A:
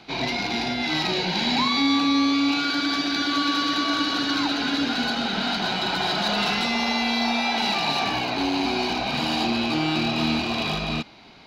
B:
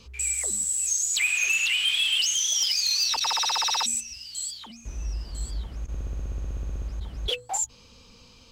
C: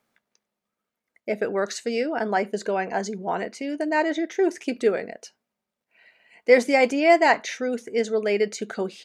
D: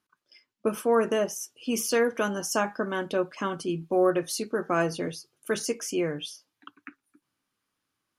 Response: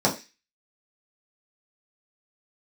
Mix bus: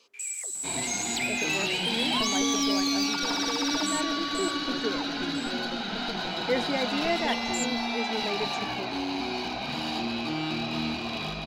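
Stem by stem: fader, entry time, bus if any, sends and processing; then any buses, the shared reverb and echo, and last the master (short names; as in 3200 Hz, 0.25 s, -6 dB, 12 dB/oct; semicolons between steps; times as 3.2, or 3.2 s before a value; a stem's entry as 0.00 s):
-7.0 dB, 0.55 s, no send, dry
-7.0 dB, 0.00 s, no send, HPF 350 Hz 24 dB/oct
-13.0 dB, 0.00 s, no send, bell 260 Hz +7 dB
0.0 dB, 1.55 s, no send, minimum comb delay 6.1 ms; compressor, threshold -36 dBFS, peak gain reduction 15 dB; steep low-pass 690 Hz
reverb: off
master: dry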